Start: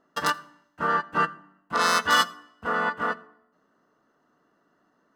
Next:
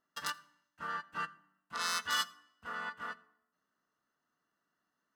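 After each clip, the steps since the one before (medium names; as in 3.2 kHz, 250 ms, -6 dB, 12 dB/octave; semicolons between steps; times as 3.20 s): amplifier tone stack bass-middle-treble 5-5-5; trim -1.5 dB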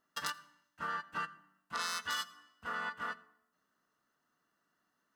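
compression 6:1, threshold -37 dBFS, peak gain reduction 9.5 dB; trim +3.5 dB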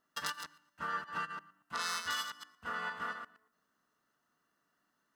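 chunks repeated in reverse 116 ms, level -7.5 dB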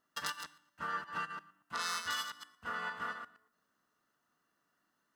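feedback comb 110 Hz, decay 0.47 s, harmonics odd, mix 50%; trim +5 dB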